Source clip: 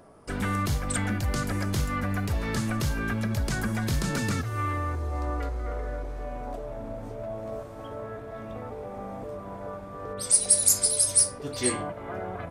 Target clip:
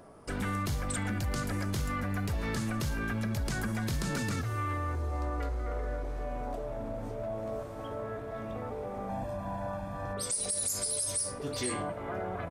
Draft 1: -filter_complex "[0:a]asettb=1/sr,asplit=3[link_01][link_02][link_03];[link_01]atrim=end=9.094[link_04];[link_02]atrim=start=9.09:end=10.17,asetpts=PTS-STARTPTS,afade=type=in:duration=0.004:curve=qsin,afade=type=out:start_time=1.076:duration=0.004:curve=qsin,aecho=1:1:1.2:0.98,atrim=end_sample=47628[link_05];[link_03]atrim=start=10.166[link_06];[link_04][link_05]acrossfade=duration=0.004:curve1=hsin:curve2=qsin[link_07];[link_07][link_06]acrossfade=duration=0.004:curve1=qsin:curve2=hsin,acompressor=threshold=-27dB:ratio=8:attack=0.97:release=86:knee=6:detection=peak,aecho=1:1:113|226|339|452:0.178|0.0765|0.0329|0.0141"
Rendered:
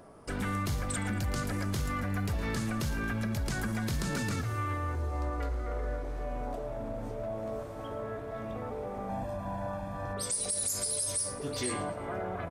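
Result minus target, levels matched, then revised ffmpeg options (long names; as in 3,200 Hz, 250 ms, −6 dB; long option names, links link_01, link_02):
echo-to-direct +10.5 dB
-filter_complex "[0:a]asettb=1/sr,asplit=3[link_01][link_02][link_03];[link_01]atrim=end=9.094[link_04];[link_02]atrim=start=9.09:end=10.17,asetpts=PTS-STARTPTS,afade=type=in:duration=0.004:curve=qsin,afade=type=out:start_time=1.076:duration=0.004:curve=qsin,aecho=1:1:1.2:0.98,atrim=end_sample=47628[link_05];[link_03]atrim=start=10.166[link_06];[link_04][link_05]acrossfade=duration=0.004:curve1=hsin:curve2=qsin[link_07];[link_07][link_06]acrossfade=duration=0.004:curve1=qsin:curve2=hsin,acompressor=threshold=-27dB:ratio=8:attack=0.97:release=86:knee=6:detection=peak,aecho=1:1:113|226:0.0531|0.0228"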